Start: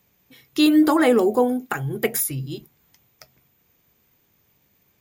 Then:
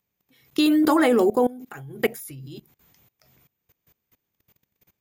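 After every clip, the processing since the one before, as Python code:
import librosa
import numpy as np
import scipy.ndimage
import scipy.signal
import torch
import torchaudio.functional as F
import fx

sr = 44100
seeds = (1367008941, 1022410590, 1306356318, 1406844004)

y = fx.level_steps(x, sr, step_db=21)
y = F.gain(torch.from_numpy(y), 3.5).numpy()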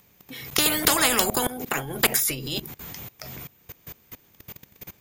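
y = fx.spectral_comp(x, sr, ratio=4.0)
y = F.gain(torch.from_numpy(y), 4.5).numpy()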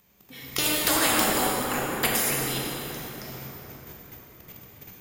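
y = fx.quant_float(x, sr, bits=4)
y = fx.rev_plate(y, sr, seeds[0], rt60_s=4.1, hf_ratio=0.55, predelay_ms=0, drr_db=-4.0)
y = F.gain(torch.from_numpy(y), -6.0).numpy()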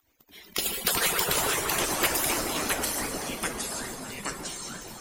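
y = fx.hpss_only(x, sr, part='percussive')
y = fx.echo_pitch(y, sr, ms=278, semitones=-3, count=3, db_per_echo=-3.0)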